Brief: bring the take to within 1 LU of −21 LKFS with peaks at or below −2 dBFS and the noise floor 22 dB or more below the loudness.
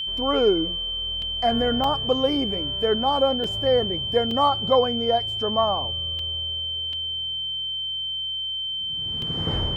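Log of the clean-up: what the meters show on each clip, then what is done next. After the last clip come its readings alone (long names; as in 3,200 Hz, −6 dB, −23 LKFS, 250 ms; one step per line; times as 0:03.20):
number of dropouts 7; longest dropout 2.6 ms; interfering tone 3,100 Hz; level of the tone −26 dBFS; integrated loudness −23.0 LKFS; sample peak −8.0 dBFS; target loudness −21.0 LKFS
→ repair the gap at 0:01.22/0:01.84/0:03.44/0:04.31/0:06.19/0:06.93/0:09.22, 2.6 ms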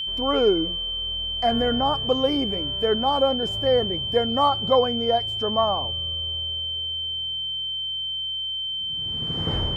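number of dropouts 0; interfering tone 3,100 Hz; level of the tone −26 dBFS
→ notch filter 3,100 Hz, Q 30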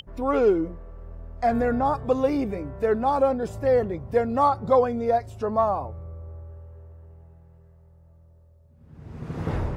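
interfering tone none found; integrated loudness −24.0 LKFS; sample peak −8.5 dBFS; target loudness −21.0 LKFS
→ level +3 dB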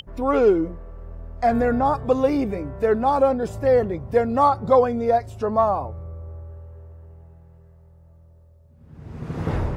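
integrated loudness −21.0 LKFS; sample peak −5.5 dBFS; background noise floor −51 dBFS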